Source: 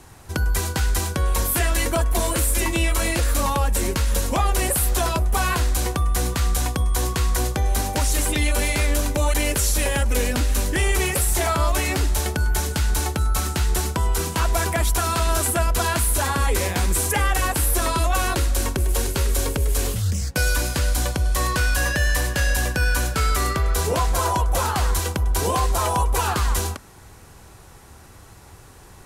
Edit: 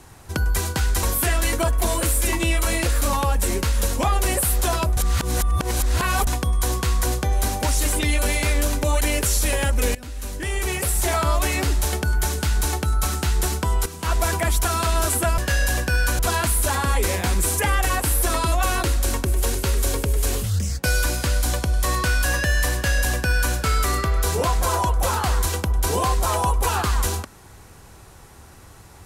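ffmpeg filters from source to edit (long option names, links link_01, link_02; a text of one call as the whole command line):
ffmpeg -i in.wav -filter_complex "[0:a]asplit=8[link_01][link_02][link_03][link_04][link_05][link_06][link_07][link_08];[link_01]atrim=end=1.032[link_09];[link_02]atrim=start=1.358:end=5.302[link_10];[link_03]atrim=start=5.298:end=6.602,asetpts=PTS-STARTPTS,areverse[link_11];[link_04]atrim=start=6.598:end=10.28,asetpts=PTS-STARTPTS,afade=type=out:start_time=3.678:duration=0.004:curve=hsin:silence=0.105925[link_12];[link_05]atrim=start=10.28:end=14.19,asetpts=PTS-STARTPTS,afade=type=in:duration=1.16:silence=0.105925,afade=type=out:start_time=3.906:duration=0.004:curve=hsin:silence=0.251189[link_13];[link_06]atrim=start=14.19:end=15.712,asetpts=PTS-STARTPTS,afade=type=in:duration=0.26:curve=qua:silence=0.251189[link_14];[link_07]atrim=start=22.258:end=23.072[link_15];[link_08]atrim=start=15.708[link_16];[link_09][link_10]acrossfade=duration=0.004:curve1=hsin:curve2=hsin[link_17];[link_17][link_11]acrossfade=duration=0.004:curve1=hsin:curve2=hsin[link_18];[link_12][link_13][link_14]concat=n=3:v=0:a=1[link_19];[link_18][link_19]acrossfade=duration=0.004:curve1=hsin:curve2=hsin[link_20];[link_20][link_15]acrossfade=duration=0.004:curve1=hsin:curve2=hsin[link_21];[link_21][link_16]acrossfade=duration=0.004:curve1=hsin:curve2=hsin" out.wav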